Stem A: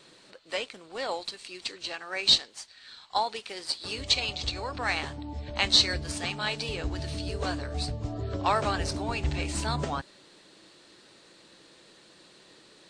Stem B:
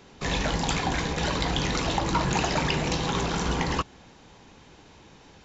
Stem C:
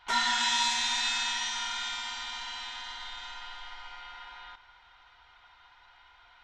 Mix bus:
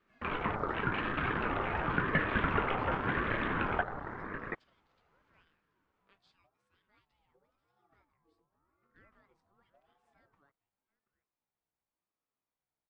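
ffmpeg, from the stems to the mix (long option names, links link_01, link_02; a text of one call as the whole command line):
ffmpeg -i stem1.wav -i stem2.wav -i stem3.wav -filter_complex "[0:a]aeval=exprs='val(0)+0.00398*(sin(2*PI*60*n/s)+sin(2*PI*2*60*n/s)/2+sin(2*PI*3*60*n/s)/3+sin(2*PI*4*60*n/s)/4+sin(2*PI*5*60*n/s)/5)':channel_layout=same,adelay=500,volume=-18dB,asplit=2[link_01][link_02];[link_02]volume=-19.5dB[link_03];[1:a]acrossover=split=4400[link_04][link_05];[link_05]acompressor=threshold=-52dB:ratio=4:attack=1:release=60[link_06];[link_04][link_06]amix=inputs=2:normalize=0,volume=1dB,asplit=2[link_07][link_08];[link_08]volume=-6dB[link_09];[2:a]volume=-20dB[link_10];[link_03][link_09]amix=inputs=2:normalize=0,aecho=0:1:730:1[link_11];[link_01][link_07][link_10][link_11]amix=inputs=4:normalize=0,afwtdn=0.0316,acrossover=split=320 2200:gain=0.112 1 0.126[link_12][link_13][link_14];[link_12][link_13][link_14]amix=inputs=3:normalize=0,aeval=exprs='val(0)*sin(2*PI*590*n/s+590*0.35/0.9*sin(2*PI*0.9*n/s))':channel_layout=same" out.wav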